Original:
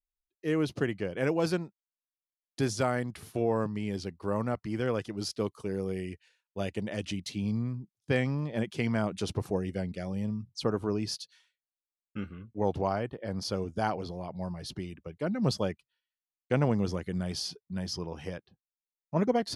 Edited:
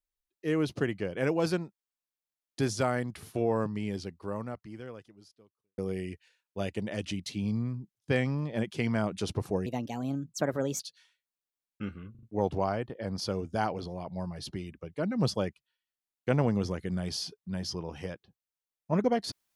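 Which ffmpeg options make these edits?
ffmpeg -i in.wav -filter_complex "[0:a]asplit=7[link_01][link_02][link_03][link_04][link_05][link_06][link_07];[link_01]atrim=end=5.78,asetpts=PTS-STARTPTS,afade=type=out:start_time=3.85:duration=1.93:curve=qua[link_08];[link_02]atrim=start=5.78:end=9.664,asetpts=PTS-STARTPTS,afade=type=in:duration=0.004:curve=hsin[link_09];[link_03]atrim=start=9.66:end=11.15,asetpts=PTS-STARTPTS,asetrate=57771,aresample=44100[link_10];[link_04]atrim=start=11.146:end=12.502[link_11];[link_05]atrim=start=12.458:end=12.502[link_12];[link_06]atrim=start=12.458:end=12.502[link_13];[link_07]atrim=start=12.458[link_14];[link_08][link_09]concat=n=2:v=0:a=1[link_15];[link_15][link_10]acrossfade=duration=0.004:curve1=hsin:curve2=hsin[link_16];[link_16][link_11]acrossfade=duration=0.004:curve1=hsin:curve2=hsin[link_17];[link_17][link_12]acrossfade=duration=0.004:curve1=hsin:curve2=hsin[link_18];[link_18][link_13]acrossfade=duration=0.004:curve1=hsin:curve2=hsin[link_19];[link_19][link_14]acrossfade=duration=0.004:curve1=hsin:curve2=hsin" out.wav

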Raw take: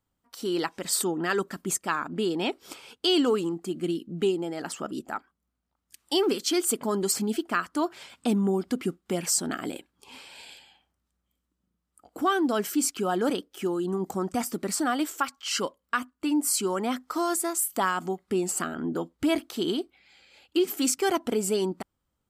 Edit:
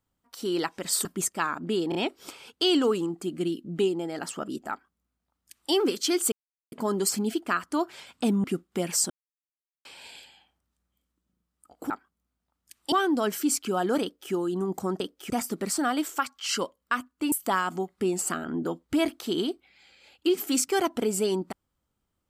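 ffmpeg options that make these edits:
ffmpeg -i in.wav -filter_complex "[0:a]asplit=13[link_01][link_02][link_03][link_04][link_05][link_06][link_07][link_08][link_09][link_10][link_11][link_12][link_13];[link_01]atrim=end=1.052[link_14];[link_02]atrim=start=1.538:end=2.412[link_15];[link_03]atrim=start=2.378:end=2.412[link_16];[link_04]atrim=start=2.378:end=6.75,asetpts=PTS-STARTPTS,afade=type=out:start_time=4.368:duration=0.004:curve=hsin,apad=pad_dur=0.4[link_17];[link_05]atrim=start=6.75:end=8.472,asetpts=PTS-STARTPTS,afade=type=in:duration=0.004:curve=hsin[link_18];[link_06]atrim=start=8.778:end=9.44,asetpts=PTS-STARTPTS,afade=type=out:start_time=0.658:duration=0.004:curve=hsin[link_19];[link_07]atrim=start=9.44:end=10.19,asetpts=PTS-STARTPTS,volume=0[link_20];[link_08]atrim=start=10.19:end=12.242,asetpts=PTS-STARTPTS,afade=type=in:duration=0.004:curve=hsin[link_21];[link_09]atrim=start=5.128:end=6.152[link_22];[link_10]atrim=start=12.238:end=14.322[link_23];[link_11]atrim=start=13.338:end=13.642[link_24];[link_12]atrim=start=14.318:end=16.342[link_25];[link_13]atrim=start=17.618[link_26];[link_14][link_15]acrossfade=duration=0.004:curve1=hsin:curve2=hsin[link_27];[link_27][link_16]acrossfade=duration=0.004:curve1=hsin:curve2=hsin[link_28];[link_17][link_18]concat=n=2:v=0:a=1[link_29];[link_28][link_29]acrossfade=duration=0.004:curve1=hsin:curve2=hsin[link_30];[link_19][link_20][link_21]concat=n=3:v=0:a=1[link_31];[link_30][link_31]acrossfade=duration=0.004:curve1=hsin:curve2=hsin[link_32];[link_32][link_22]acrossfade=duration=0.004:curve1=hsin:curve2=hsin[link_33];[link_33][link_23]acrossfade=duration=0.004:curve1=hsin:curve2=hsin[link_34];[link_34][link_24]acrossfade=duration=0.004:curve1=hsin:curve2=hsin[link_35];[link_35][link_25]acrossfade=duration=0.004:curve1=hsin:curve2=hsin[link_36];[link_36][link_26]acrossfade=duration=0.004:curve1=hsin:curve2=hsin" out.wav

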